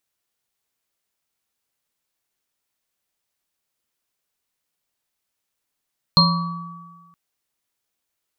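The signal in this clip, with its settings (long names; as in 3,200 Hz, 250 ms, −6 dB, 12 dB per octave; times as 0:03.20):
inharmonic partials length 0.97 s, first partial 171 Hz, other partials 560/970/1,140/4,210 Hz, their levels −14.5/−9.5/−4/4.5 dB, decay 1.36 s, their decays 0.61/0.82/1.67/0.43 s, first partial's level −13.5 dB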